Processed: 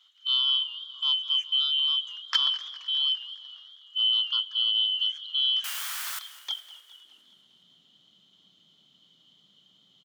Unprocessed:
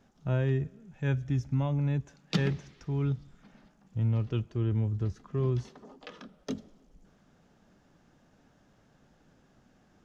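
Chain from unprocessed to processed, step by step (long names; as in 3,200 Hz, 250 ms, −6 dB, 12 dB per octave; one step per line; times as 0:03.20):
band-splitting scrambler in four parts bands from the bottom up 2413
0:05.64–0:06.19: bit-depth reduction 6 bits, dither triangular
high-pass filter sweep 1,300 Hz → 170 Hz, 0:06.24–0:07.45
on a send: echo with shifted repeats 256 ms, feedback 50%, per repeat +82 Hz, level −22.5 dB
on the sum: feedback echo with a swinging delay time 205 ms, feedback 58%, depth 133 cents, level −17 dB
level +1 dB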